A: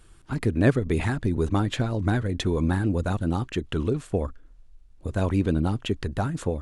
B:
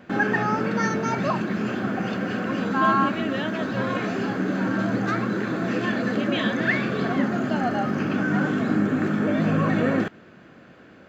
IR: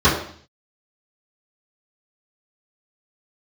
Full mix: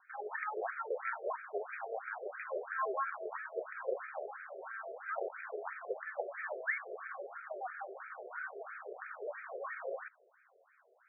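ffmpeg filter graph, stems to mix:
-filter_complex "[0:a]aeval=exprs='val(0)*sin(2*PI*110*n/s)':c=same,volume=0.631[s0];[1:a]volume=0.266[s1];[s0][s1]amix=inputs=2:normalize=0,acrossover=split=130|3000[s2][s3][s4];[s2]acompressor=threshold=0.00708:ratio=6[s5];[s5][s3][s4]amix=inputs=3:normalize=0,equalizer=f=8500:w=1:g=11.5,afftfilt=real='re*between(b*sr/1024,500*pow(1800/500,0.5+0.5*sin(2*PI*3*pts/sr))/1.41,500*pow(1800/500,0.5+0.5*sin(2*PI*3*pts/sr))*1.41)':imag='im*between(b*sr/1024,500*pow(1800/500,0.5+0.5*sin(2*PI*3*pts/sr))/1.41,500*pow(1800/500,0.5+0.5*sin(2*PI*3*pts/sr))*1.41)':win_size=1024:overlap=0.75"

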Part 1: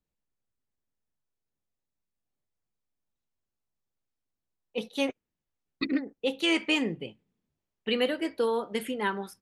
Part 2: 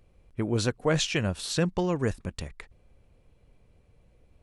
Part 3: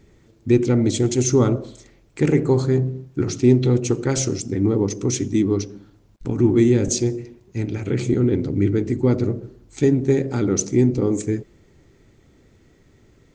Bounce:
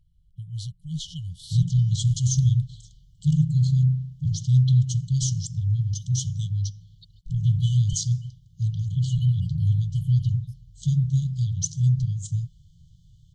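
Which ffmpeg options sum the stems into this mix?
-filter_complex "[0:a]adelay=1200,volume=0.398[s0];[1:a]volume=0.794[s1];[2:a]adelay=1050,volume=1.33[s2];[s0][s1][s2]amix=inputs=3:normalize=0,afftfilt=real='re*(1-between(b*sr/4096,180,2900))':imag='im*(1-between(b*sr/4096,180,2900))':win_size=4096:overlap=0.75,highshelf=f=3400:g=-9"

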